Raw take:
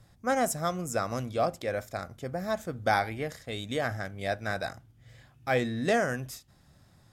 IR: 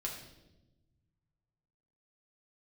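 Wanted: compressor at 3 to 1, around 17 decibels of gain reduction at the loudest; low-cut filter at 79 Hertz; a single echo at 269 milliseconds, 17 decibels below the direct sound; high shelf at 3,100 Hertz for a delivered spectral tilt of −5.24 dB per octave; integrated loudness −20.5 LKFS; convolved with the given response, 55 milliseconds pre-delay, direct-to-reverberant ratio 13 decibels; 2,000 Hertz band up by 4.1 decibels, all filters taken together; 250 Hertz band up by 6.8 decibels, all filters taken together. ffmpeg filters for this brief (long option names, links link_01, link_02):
-filter_complex "[0:a]highpass=79,equalizer=frequency=250:width_type=o:gain=8,equalizer=frequency=2000:width_type=o:gain=7.5,highshelf=frequency=3100:gain=-7,acompressor=threshold=-43dB:ratio=3,aecho=1:1:269:0.141,asplit=2[link_01][link_02];[1:a]atrim=start_sample=2205,adelay=55[link_03];[link_02][link_03]afir=irnorm=-1:irlink=0,volume=-13.5dB[link_04];[link_01][link_04]amix=inputs=2:normalize=0,volume=22dB"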